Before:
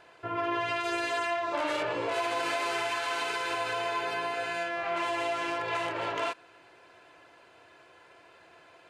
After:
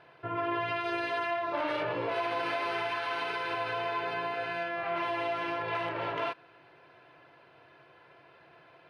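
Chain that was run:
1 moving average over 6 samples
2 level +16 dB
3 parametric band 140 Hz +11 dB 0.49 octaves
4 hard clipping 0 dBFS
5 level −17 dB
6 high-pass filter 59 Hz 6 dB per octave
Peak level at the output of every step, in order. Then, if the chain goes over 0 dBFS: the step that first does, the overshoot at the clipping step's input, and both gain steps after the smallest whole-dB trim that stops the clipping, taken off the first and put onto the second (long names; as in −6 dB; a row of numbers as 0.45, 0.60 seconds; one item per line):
−19.0, −3.0, −3.5, −3.5, −20.5, −20.0 dBFS
no step passes full scale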